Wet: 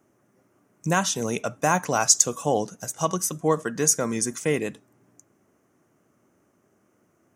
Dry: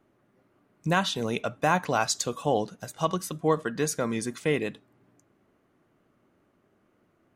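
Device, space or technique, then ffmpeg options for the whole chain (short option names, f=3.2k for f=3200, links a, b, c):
budget condenser microphone: -af "highpass=72,highshelf=f=5k:t=q:w=3:g=6.5,volume=2dB"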